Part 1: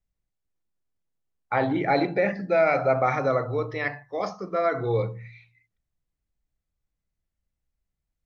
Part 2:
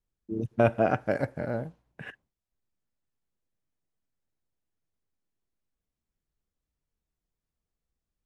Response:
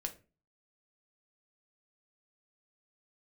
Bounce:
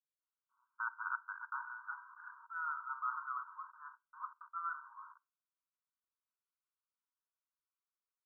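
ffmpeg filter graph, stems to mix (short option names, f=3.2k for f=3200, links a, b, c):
-filter_complex "[0:a]aeval=exprs='val(0)*gte(abs(val(0)),0.0224)':c=same,volume=-11.5dB,asplit=2[a][b];[b]volume=-8dB[c];[1:a]adelay=200,volume=-3.5dB,asplit=2[d][e];[e]volume=-11dB[f];[2:a]atrim=start_sample=2205[g];[c][f]amix=inputs=2:normalize=0[h];[h][g]afir=irnorm=-1:irlink=0[i];[a][d][i]amix=inputs=3:normalize=0,asoftclip=type=tanh:threshold=-8dB,asuperpass=centerf=1200:order=20:qfactor=1.9"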